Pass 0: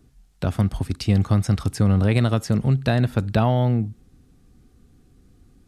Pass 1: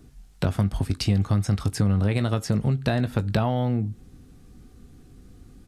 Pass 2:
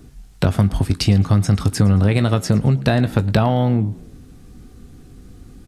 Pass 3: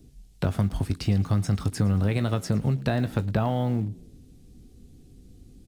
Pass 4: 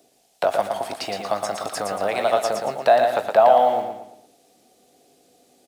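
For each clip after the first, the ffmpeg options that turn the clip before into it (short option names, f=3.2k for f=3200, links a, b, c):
-filter_complex "[0:a]acompressor=threshold=-27dB:ratio=3,asplit=2[a][b];[b]adelay=20,volume=-12dB[c];[a][c]amix=inputs=2:normalize=0,volume=5dB"
-filter_complex "[0:a]asplit=4[a][b][c][d];[b]adelay=110,afreqshift=69,volume=-22dB[e];[c]adelay=220,afreqshift=138,volume=-30.2dB[f];[d]adelay=330,afreqshift=207,volume=-38.4dB[g];[a][e][f][g]amix=inputs=4:normalize=0,volume=7dB"
-filter_complex "[0:a]acrossover=split=720|2200[a][b][c];[b]acrusher=bits=7:mix=0:aa=0.000001[d];[c]alimiter=limit=-17.5dB:level=0:latency=1:release=135[e];[a][d][e]amix=inputs=3:normalize=0,volume=-8.5dB"
-filter_complex "[0:a]highpass=f=670:t=q:w=4.5,asplit=2[a][b];[b]aecho=0:1:116|232|348|464|580:0.562|0.214|0.0812|0.0309|0.0117[c];[a][c]amix=inputs=2:normalize=0,volume=5.5dB"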